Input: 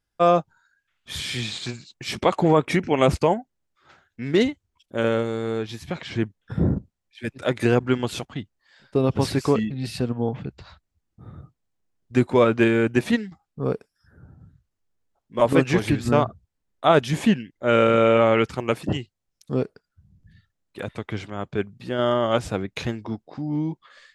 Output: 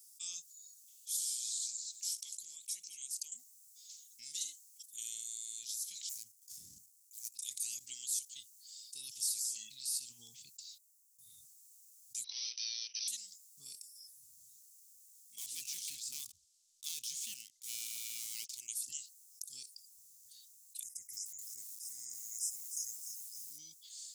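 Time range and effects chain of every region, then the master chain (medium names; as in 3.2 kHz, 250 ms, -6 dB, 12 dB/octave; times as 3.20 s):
1.16–3.32 s: compression 2.5:1, threshold -33 dBFS + bass shelf 250 Hz -9.5 dB + feedback delay 218 ms, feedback 31%, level -24 dB
6.09–7.35 s: median filter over 15 samples + peaking EQ 3.7 kHz -6 dB 0.66 oct + compression, threshold -22 dBFS
10.27–11.30 s: gate -53 dBFS, range -15 dB + peaking EQ 3.4 kHz -4.5 dB 2.6 oct
12.24–13.08 s: overdrive pedal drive 29 dB, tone 1.4 kHz, clips at -5 dBFS + brick-wall FIR band-pass 430–6100 Hz
15.38–18.60 s: low-pass 3.1 kHz + waveshaping leveller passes 1
20.83–23.59 s: brick-wall FIR band-stop 2.2–4.9 kHz + peaking EQ 1.2 kHz -11 dB 0.55 oct + bit-crushed delay 300 ms, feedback 35%, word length 8-bit, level -13.5 dB
whole clip: inverse Chebyshev high-pass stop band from 1.6 kHz, stop band 70 dB; level flattener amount 50%; trim +5.5 dB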